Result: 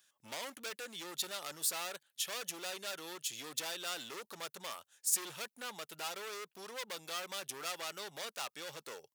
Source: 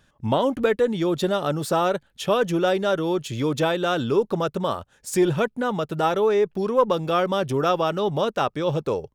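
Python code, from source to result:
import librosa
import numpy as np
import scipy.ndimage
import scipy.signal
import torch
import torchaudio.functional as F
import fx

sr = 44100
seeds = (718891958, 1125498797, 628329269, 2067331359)

y = scipy.signal.sosfilt(scipy.signal.butter(2, 77.0, 'highpass', fs=sr, output='sos'), x)
y = np.clip(10.0 ** (23.0 / 20.0) * y, -1.0, 1.0) / 10.0 ** (23.0 / 20.0)
y = np.diff(y, prepend=0.0)
y = F.gain(torch.from_numpy(y), 1.0).numpy()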